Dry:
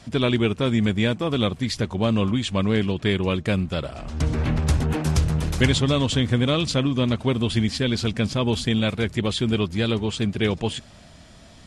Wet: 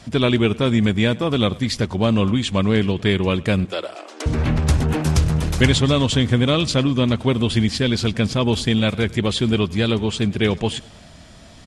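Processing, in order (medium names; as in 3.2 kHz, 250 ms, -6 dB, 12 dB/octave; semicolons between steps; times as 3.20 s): 3.65–4.26 s: Chebyshev high-pass 310 Hz, order 5; on a send: feedback delay 101 ms, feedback 45%, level -23 dB; on the sum: trim +3.5 dB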